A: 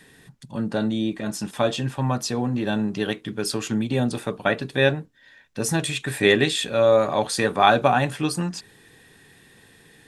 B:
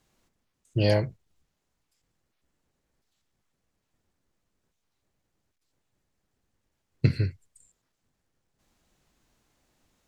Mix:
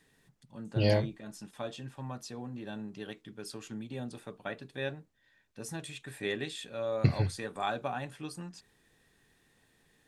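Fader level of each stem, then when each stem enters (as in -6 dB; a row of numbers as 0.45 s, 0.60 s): -17.0 dB, -3.5 dB; 0.00 s, 0.00 s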